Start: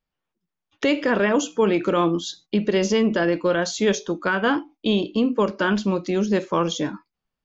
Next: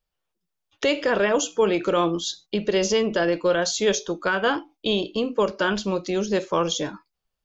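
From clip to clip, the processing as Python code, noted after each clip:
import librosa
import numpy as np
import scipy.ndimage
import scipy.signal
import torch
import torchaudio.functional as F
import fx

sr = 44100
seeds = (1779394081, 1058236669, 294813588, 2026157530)

y = fx.graphic_eq_10(x, sr, hz=(125, 250, 1000, 2000), db=(-5, -11, -4, -5))
y = y * librosa.db_to_amplitude(4.0)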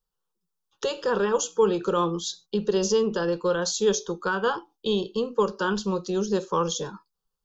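y = fx.fixed_phaser(x, sr, hz=430.0, stages=8)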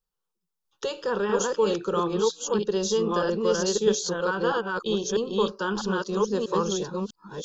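y = fx.reverse_delay(x, sr, ms=646, wet_db=-1)
y = y * librosa.db_to_amplitude(-2.5)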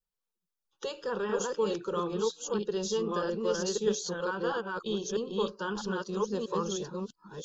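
y = fx.spec_quant(x, sr, step_db=15)
y = y * librosa.db_to_amplitude(-6.0)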